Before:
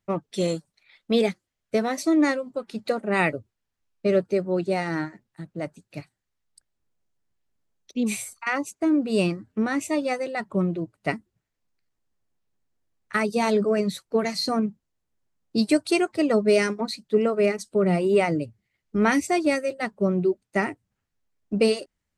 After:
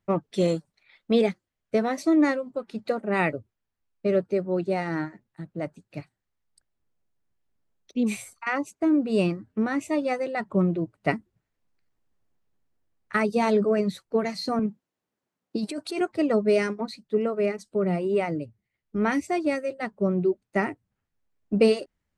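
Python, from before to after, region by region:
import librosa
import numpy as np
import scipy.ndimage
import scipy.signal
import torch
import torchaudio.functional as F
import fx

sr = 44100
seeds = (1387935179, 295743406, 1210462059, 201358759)

y = fx.chain(x, sr, fx.highpass(hz=200.0, slope=12),
    fx.over_compress(threshold_db=-26.0, ratio=-1.0), at=(14.59, 16.01))
y = fx.high_shelf(y, sr, hz=3600.0, db=-9.0)
y = fx.rider(y, sr, range_db=10, speed_s=2.0)
y = y * 10.0 ** (-1.5 / 20.0)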